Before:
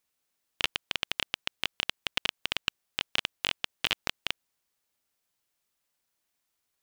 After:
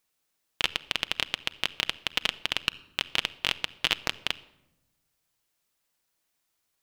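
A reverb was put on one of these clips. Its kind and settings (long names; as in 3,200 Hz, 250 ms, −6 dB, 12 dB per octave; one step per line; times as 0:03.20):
rectangular room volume 3,800 cubic metres, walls furnished, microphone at 0.62 metres
level +2.5 dB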